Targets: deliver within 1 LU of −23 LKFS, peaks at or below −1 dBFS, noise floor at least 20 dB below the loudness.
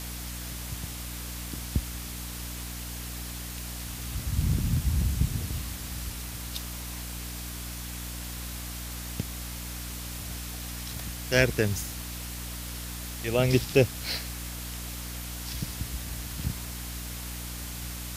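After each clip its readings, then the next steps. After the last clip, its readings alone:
mains hum 60 Hz; hum harmonics up to 300 Hz; level of the hum −37 dBFS; background noise floor −38 dBFS; target noise floor −52 dBFS; integrated loudness −32.0 LKFS; sample peak −6.5 dBFS; target loudness −23.0 LKFS
→ mains-hum notches 60/120/180/240/300 Hz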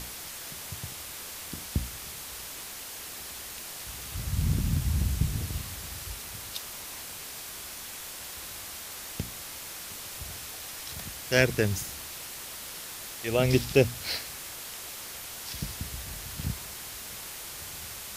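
mains hum none found; background noise floor −41 dBFS; target noise floor −53 dBFS
→ broadband denoise 12 dB, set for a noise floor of −41 dBFS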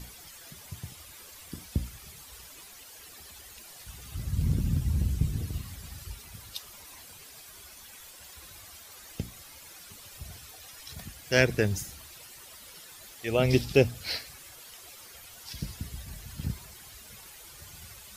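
background noise floor −49 dBFS; target noise floor −52 dBFS
→ broadband denoise 6 dB, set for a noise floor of −49 dBFS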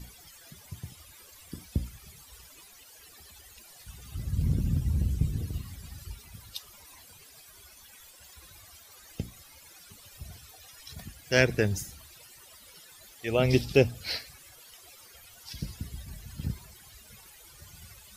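background noise floor −53 dBFS; integrated loudness −30.5 LKFS; sample peak −6.5 dBFS; target loudness −23.0 LKFS
→ level +7.5 dB
brickwall limiter −1 dBFS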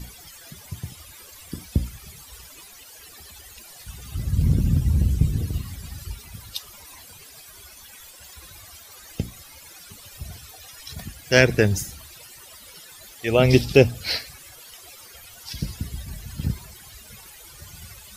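integrated loudness −23.5 LKFS; sample peak −1.0 dBFS; background noise floor −46 dBFS

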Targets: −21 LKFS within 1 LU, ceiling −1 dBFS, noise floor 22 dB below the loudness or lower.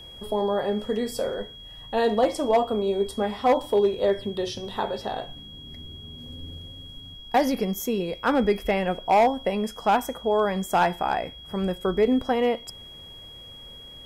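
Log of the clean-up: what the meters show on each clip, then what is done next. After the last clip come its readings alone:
share of clipped samples 0.4%; peaks flattened at −13.5 dBFS; interfering tone 3,300 Hz; level of the tone −42 dBFS; integrated loudness −25.0 LKFS; sample peak −13.5 dBFS; target loudness −21.0 LKFS
→ clipped peaks rebuilt −13.5 dBFS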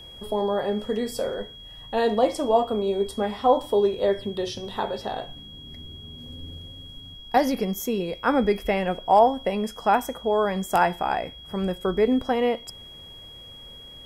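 share of clipped samples 0.0%; interfering tone 3,300 Hz; level of the tone −42 dBFS
→ notch filter 3,300 Hz, Q 30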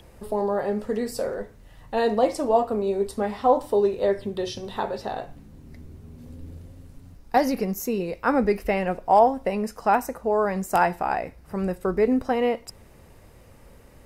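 interfering tone none found; integrated loudness −24.5 LKFS; sample peak −6.5 dBFS; target loudness −21.0 LKFS
→ level +3.5 dB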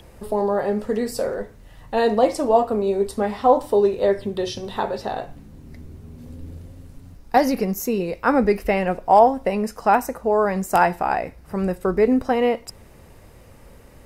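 integrated loudness −21.0 LKFS; sample peak −3.0 dBFS; background noise floor −47 dBFS

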